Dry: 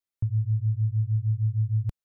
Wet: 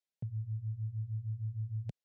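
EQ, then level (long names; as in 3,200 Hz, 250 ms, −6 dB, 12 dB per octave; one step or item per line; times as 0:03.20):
Bessel high-pass filter 170 Hz
high-frequency loss of the air 70 metres
phaser with its sweep stopped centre 310 Hz, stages 6
+1.0 dB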